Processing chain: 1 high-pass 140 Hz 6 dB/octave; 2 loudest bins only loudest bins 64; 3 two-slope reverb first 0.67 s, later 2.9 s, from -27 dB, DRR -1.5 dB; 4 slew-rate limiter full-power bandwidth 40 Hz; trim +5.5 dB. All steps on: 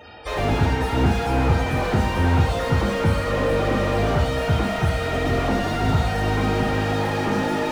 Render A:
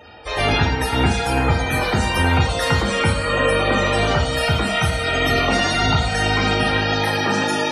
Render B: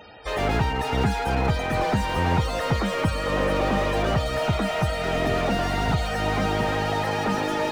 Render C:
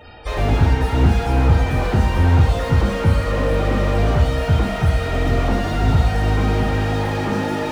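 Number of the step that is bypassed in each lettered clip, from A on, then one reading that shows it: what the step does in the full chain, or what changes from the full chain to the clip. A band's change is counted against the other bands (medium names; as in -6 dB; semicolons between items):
4, distortion -3 dB; 3, 125 Hz band -4.0 dB; 1, 125 Hz band +5.0 dB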